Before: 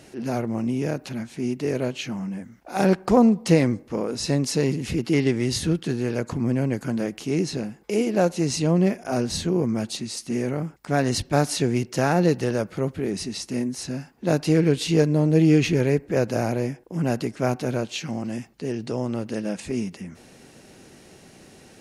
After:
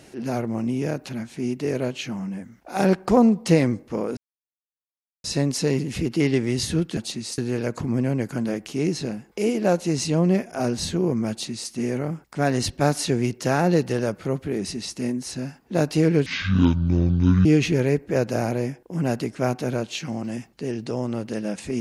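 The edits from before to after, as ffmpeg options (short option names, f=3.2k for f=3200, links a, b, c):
-filter_complex "[0:a]asplit=6[a][b][c][d][e][f];[a]atrim=end=4.17,asetpts=PTS-STARTPTS,afade=t=out:st=4.166:d=0.004:c=hsin,apad=pad_dur=1.07[g];[b]atrim=start=4.17:end=5.902,asetpts=PTS-STARTPTS,afade=t=in:d=0.004:c=hsin[h];[c]atrim=start=9.818:end=10.232[i];[d]atrim=start=5.898:end=14.784[j];[e]atrim=start=14.78:end=15.46,asetpts=PTS-STARTPTS,asetrate=25137,aresample=44100[k];[f]atrim=start=15.456[l];[g][h]concat=n=2:v=0:a=1[m];[m][i]acrossfade=d=0.004:c1=hsin:c2=hsin[n];[n][j]acrossfade=d=0.004:c1=hsin:c2=hsin[o];[o][k]acrossfade=d=0.004:c1=hsin:c2=hsin[p];[p][l]acrossfade=d=0.004:c1=hsin:c2=hsin"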